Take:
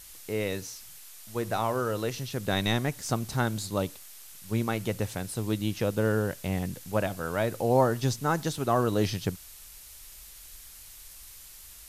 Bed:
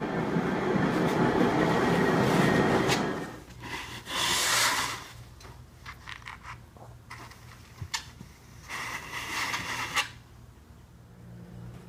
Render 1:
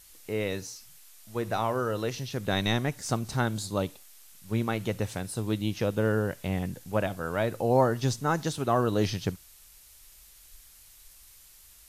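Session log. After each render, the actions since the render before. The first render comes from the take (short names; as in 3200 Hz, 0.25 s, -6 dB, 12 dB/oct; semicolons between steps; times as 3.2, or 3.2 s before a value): noise print and reduce 6 dB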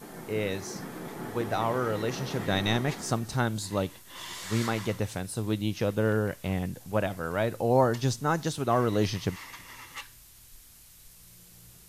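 add bed -13.5 dB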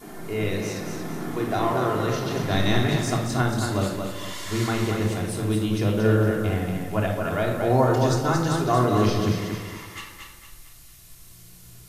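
thinning echo 0.229 s, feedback 39%, high-pass 150 Hz, level -5 dB; shoebox room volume 1900 m³, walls furnished, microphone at 3.2 m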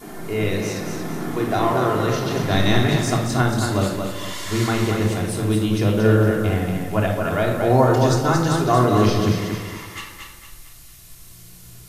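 gain +4 dB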